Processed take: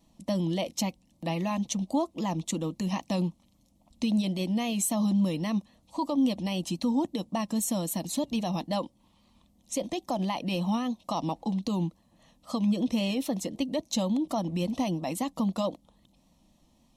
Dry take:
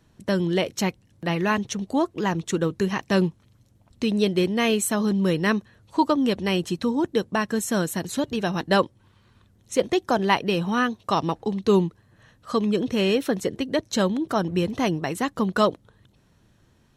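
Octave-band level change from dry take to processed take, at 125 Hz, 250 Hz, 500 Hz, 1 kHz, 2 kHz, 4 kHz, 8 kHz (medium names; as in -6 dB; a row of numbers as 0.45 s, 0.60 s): -4.5 dB, -4.0 dB, -10.0 dB, -8.0 dB, -14.5 dB, -6.5 dB, -1.5 dB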